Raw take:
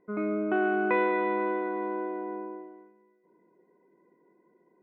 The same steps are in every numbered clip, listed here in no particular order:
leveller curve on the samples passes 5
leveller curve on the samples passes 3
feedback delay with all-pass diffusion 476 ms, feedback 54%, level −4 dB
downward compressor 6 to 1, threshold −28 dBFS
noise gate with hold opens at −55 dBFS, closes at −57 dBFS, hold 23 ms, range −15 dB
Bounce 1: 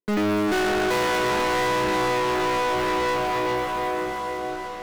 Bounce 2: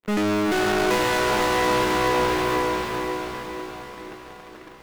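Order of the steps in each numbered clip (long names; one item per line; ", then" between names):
noise gate with hold, then second leveller curve on the samples, then feedback delay with all-pass diffusion, then downward compressor, then first leveller curve on the samples
downward compressor, then first leveller curve on the samples, then noise gate with hold, then second leveller curve on the samples, then feedback delay with all-pass diffusion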